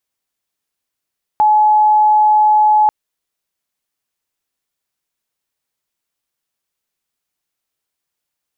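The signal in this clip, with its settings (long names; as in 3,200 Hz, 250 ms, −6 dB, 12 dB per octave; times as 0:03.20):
tone sine 851 Hz −7.5 dBFS 1.49 s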